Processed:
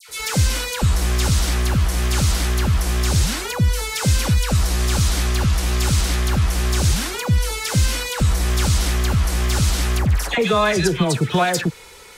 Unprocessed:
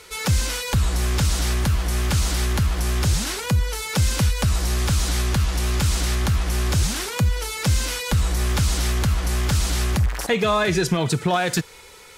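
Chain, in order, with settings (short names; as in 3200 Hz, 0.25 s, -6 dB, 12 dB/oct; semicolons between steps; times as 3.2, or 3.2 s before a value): dispersion lows, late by 89 ms, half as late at 1600 Hz; gain +2.5 dB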